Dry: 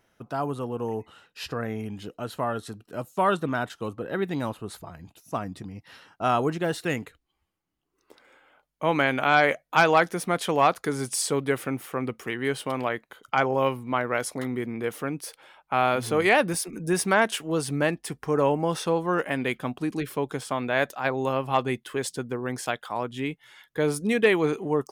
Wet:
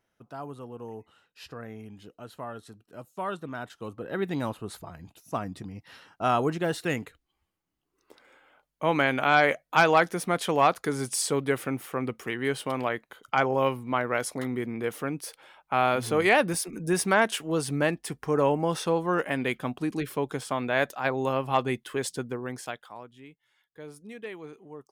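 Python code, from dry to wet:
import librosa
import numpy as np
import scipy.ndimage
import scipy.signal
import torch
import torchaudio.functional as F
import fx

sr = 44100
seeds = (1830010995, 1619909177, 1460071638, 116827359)

y = fx.gain(x, sr, db=fx.line((3.47, -10.0), (4.29, -1.0), (22.21, -1.0), (22.75, -8.0), (23.2, -19.0)))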